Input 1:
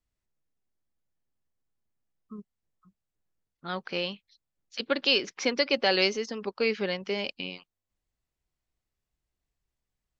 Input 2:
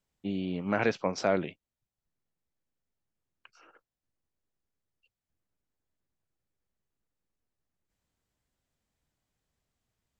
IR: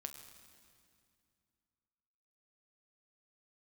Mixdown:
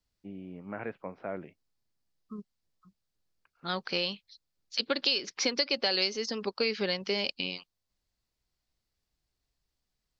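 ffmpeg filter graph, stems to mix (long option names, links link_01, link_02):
-filter_complex "[0:a]equalizer=frequency=4600:width_type=o:width=0.74:gain=9.5,volume=0.5dB[link_01];[1:a]lowpass=frequency=2300:width=0.5412,lowpass=frequency=2300:width=1.3066,volume=-10.5dB[link_02];[link_01][link_02]amix=inputs=2:normalize=0,acompressor=threshold=-25dB:ratio=5"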